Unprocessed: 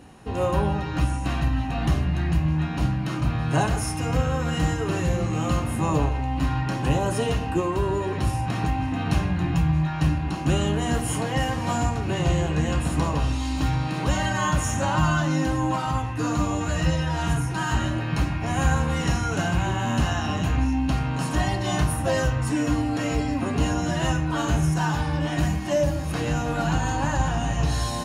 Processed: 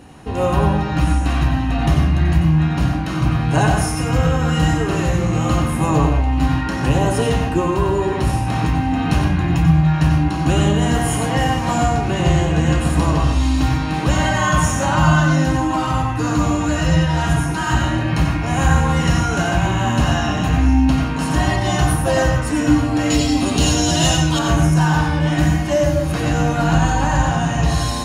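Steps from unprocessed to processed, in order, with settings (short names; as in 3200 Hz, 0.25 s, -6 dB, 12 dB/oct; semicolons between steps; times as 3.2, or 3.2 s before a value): 23.1–24.39 resonant high shelf 2600 Hz +10 dB, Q 1.5; reverb RT60 0.35 s, pre-delay 85 ms, DRR 2.5 dB; gain +5 dB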